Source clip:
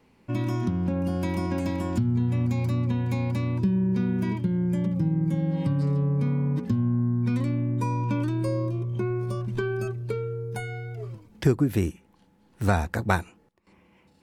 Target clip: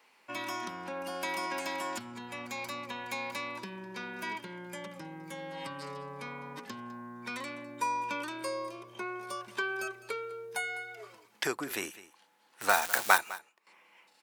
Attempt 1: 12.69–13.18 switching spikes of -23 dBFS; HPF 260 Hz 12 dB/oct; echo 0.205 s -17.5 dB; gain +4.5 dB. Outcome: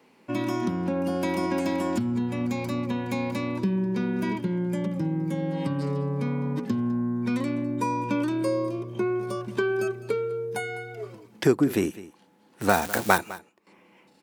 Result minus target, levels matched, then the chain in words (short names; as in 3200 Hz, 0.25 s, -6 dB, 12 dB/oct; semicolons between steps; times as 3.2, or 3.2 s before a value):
250 Hz band +10.5 dB
12.69–13.18 switching spikes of -23 dBFS; HPF 940 Hz 12 dB/oct; echo 0.205 s -17.5 dB; gain +4.5 dB